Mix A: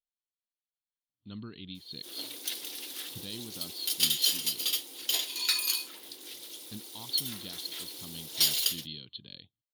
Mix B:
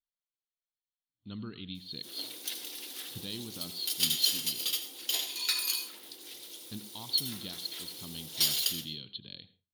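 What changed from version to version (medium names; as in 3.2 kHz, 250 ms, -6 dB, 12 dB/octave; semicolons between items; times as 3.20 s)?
background -5.0 dB; reverb: on, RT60 0.30 s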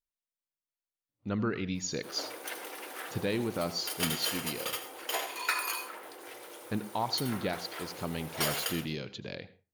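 speech: remove rippled Chebyshev low-pass 4.4 kHz, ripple 9 dB; master: add FFT filter 260 Hz 0 dB, 550 Hz +14 dB, 1.4 kHz +15 dB, 2.4 kHz +5 dB, 3.7 kHz -11 dB, 8.4 kHz -3 dB, 14 kHz -5 dB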